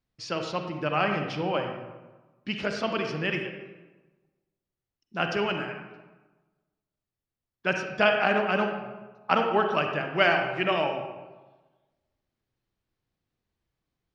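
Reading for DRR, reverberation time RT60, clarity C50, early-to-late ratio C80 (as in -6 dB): 3.5 dB, 1.2 s, 4.5 dB, 6.5 dB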